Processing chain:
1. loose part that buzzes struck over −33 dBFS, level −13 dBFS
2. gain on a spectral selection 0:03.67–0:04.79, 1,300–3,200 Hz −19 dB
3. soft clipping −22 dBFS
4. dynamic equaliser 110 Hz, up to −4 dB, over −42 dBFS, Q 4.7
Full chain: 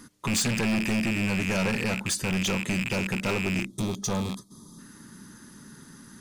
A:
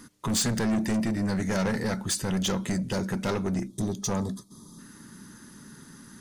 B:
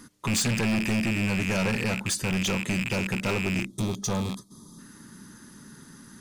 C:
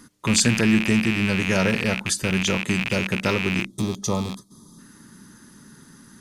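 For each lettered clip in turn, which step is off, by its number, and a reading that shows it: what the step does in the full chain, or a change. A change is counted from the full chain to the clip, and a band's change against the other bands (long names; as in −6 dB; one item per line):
1, 2 kHz band −7.5 dB
4, 125 Hz band +1.5 dB
3, distortion level −8 dB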